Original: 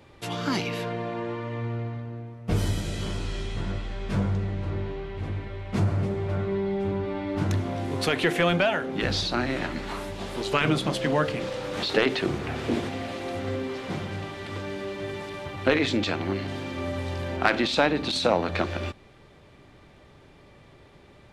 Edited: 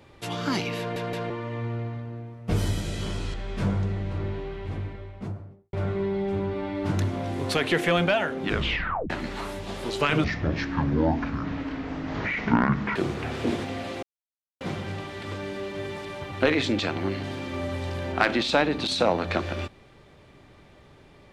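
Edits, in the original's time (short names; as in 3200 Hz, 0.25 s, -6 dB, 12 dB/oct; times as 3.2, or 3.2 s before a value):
0.79 stutter in place 0.17 s, 3 plays
3.34–3.86 cut
5.1–6.25 studio fade out
8.97 tape stop 0.65 s
10.76–12.2 speed 53%
13.27–13.85 mute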